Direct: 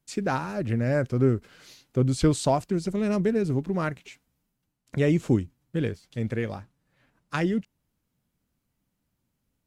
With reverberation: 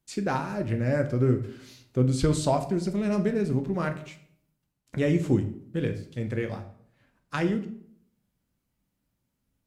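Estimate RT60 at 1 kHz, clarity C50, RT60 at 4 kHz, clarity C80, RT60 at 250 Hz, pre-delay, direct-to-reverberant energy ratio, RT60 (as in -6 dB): 0.60 s, 12.0 dB, 0.45 s, 15.0 dB, 0.80 s, 5 ms, 6.0 dB, 0.65 s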